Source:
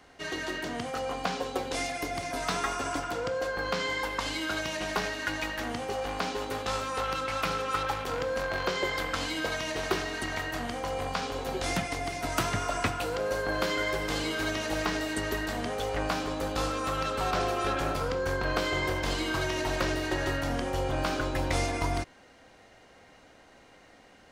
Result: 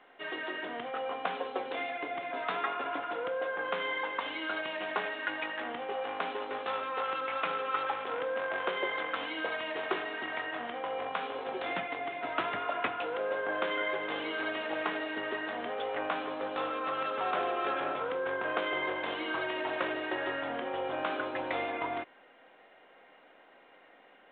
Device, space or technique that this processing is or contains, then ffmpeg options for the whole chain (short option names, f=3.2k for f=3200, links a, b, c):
telephone: -af "highpass=370,lowpass=3.4k,volume=-1.5dB" -ar 8000 -c:a pcm_mulaw